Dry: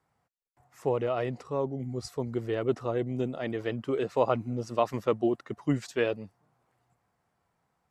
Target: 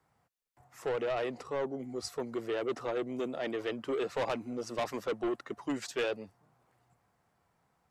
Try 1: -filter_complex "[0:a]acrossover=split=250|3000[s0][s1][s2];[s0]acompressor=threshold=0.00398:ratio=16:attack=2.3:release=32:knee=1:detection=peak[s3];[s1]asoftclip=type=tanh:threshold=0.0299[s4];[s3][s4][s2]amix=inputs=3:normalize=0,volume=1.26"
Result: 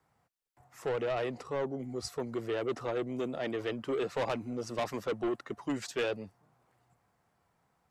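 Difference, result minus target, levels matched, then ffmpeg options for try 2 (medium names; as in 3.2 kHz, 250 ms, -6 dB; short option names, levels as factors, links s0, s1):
compression: peak gain reduction -8.5 dB
-filter_complex "[0:a]acrossover=split=250|3000[s0][s1][s2];[s0]acompressor=threshold=0.00141:ratio=16:attack=2.3:release=32:knee=1:detection=peak[s3];[s1]asoftclip=type=tanh:threshold=0.0299[s4];[s3][s4][s2]amix=inputs=3:normalize=0,volume=1.26"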